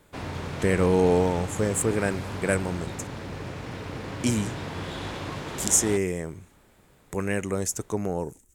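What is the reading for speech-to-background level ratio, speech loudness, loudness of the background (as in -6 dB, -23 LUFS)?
9.0 dB, -26.0 LUFS, -35.0 LUFS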